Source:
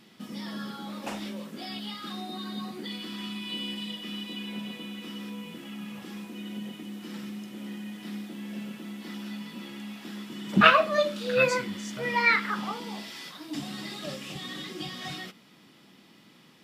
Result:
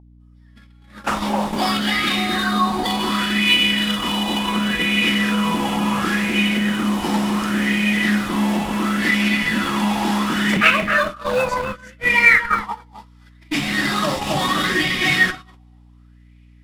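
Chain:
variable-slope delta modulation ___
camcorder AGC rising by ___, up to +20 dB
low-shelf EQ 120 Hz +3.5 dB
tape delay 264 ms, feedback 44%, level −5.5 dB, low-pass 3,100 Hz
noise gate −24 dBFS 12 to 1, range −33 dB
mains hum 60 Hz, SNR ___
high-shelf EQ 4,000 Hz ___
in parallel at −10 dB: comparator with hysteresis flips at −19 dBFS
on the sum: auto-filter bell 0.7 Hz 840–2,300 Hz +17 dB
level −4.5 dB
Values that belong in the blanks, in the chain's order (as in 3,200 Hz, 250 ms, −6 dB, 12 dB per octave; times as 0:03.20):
64 kbit/s, 11 dB per second, 23 dB, +3 dB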